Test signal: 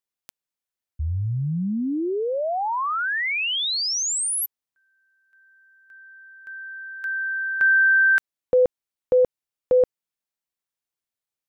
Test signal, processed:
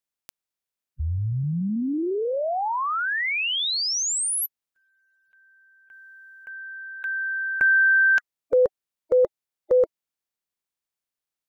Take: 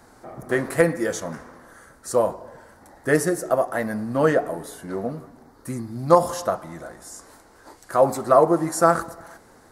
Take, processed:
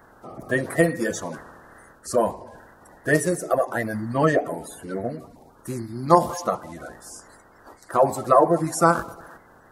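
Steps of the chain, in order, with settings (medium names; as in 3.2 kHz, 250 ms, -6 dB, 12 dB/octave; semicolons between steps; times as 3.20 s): coarse spectral quantiser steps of 30 dB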